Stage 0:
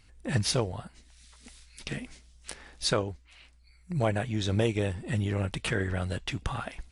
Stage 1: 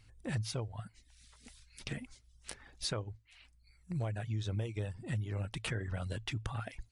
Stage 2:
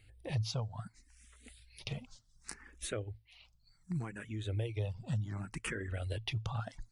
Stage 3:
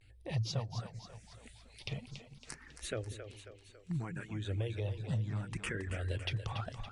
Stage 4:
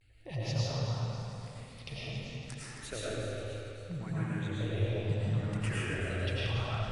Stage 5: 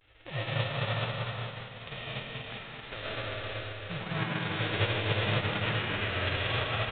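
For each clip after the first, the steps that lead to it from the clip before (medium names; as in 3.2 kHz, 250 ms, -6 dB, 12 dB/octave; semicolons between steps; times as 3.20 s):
reverb removal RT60 0.55 s; peaking EQ 110 Hz +12.5 dB 0.27 oct; compression 6:1, threshold -29 dBFS, peak gain reduction 12.5 dB; trim -4.5 dB
barber-pole phaser +0.67 Hz; trim +2.5 dB
two-band feedback delay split 360 Hz, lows 195 ms, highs 276 ms, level -9 dB; vibrato 0.43 Hz 48 cents; low-pass 8.6 kHz 12 dB/octave
reverberation RT60 2.6 s, pre-delay 65 ms, DRR -8.5 dB; trim -3.5 dB
formants flattened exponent 0.3; delay 386 ms -6 dB; resampled via 8 kHz; trim +2.5 dB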